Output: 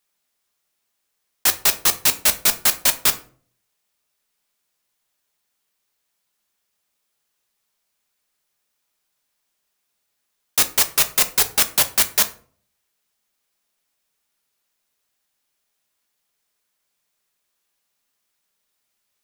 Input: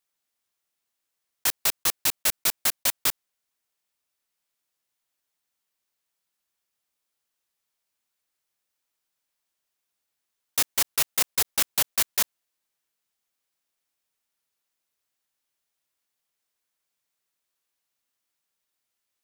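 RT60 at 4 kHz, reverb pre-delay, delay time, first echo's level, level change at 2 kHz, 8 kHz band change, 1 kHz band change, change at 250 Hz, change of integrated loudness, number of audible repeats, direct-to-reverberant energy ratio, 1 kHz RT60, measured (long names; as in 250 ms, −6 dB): 0.30 s, 5 ms, no echo audible, no echo audible, +7.0 dB, +7.0 dB, +7.5 dB, +7.5 dB, +7.0 dB, no echo audible, 8.0 dB, 0.40 s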